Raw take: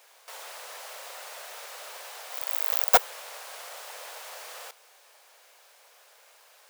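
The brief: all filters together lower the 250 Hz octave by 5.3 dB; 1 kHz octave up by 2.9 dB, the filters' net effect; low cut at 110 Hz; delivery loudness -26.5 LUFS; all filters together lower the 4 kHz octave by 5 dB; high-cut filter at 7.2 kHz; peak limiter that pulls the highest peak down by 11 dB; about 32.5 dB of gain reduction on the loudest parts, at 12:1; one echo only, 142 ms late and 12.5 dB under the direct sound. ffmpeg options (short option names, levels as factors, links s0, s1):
-af "highpass=110,lowpass=7200,equalizer=f=250:t=o:g=-7,equalizer=f=1000:t=o:g=5,equalizer=f=4000:t=o:g=-6.5,acompressor=threshold=0.00398:ratio=12,alimiter=level_in=9.44:limit=0.0631:level=0:latency=1,volume=0.106,aecho=1:1:142:0.237,volume=22.4"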